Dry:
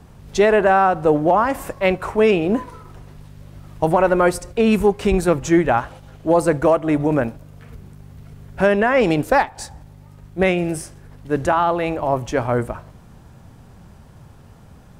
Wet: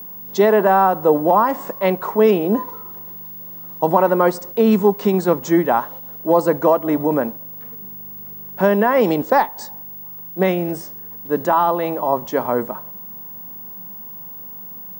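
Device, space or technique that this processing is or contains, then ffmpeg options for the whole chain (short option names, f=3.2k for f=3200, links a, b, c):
old television with a line whistle: -af "highpass=f=170:w=0.5412,highpass=f=170:w=1.3066,equalizer=f=200:t=q:w=4:g=5,equalizer=f=460:t=q:w=4:g=3,equalizer=f=980:t=q:w=4:g=7,equalizer=f=1.5k:t=q:w=4:g=-3,equalizer=f=2.5k:t=q:w=4:g=-9,lowpass=f=7.3k:w=0.5412,lowpass=f=7.3k:w=1.3066,aeval=exprs='val(0)+0.0282*sin(2*PI*15625*n/s)':c=same,volume=-1dB"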